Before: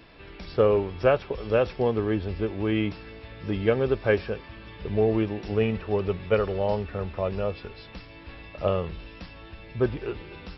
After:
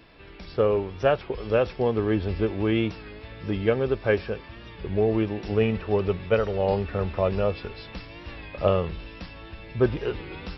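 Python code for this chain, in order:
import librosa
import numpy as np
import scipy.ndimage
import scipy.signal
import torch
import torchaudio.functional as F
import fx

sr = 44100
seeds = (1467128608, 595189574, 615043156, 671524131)

y = fx.rider(x, sr, range_db=3, speed_s=0.5)
y = fx.record_warp(y, sr, rpm=33.33, depth_cents=100.0)
y = F.gain(torch.from_numpy(y), 1.5).numpy()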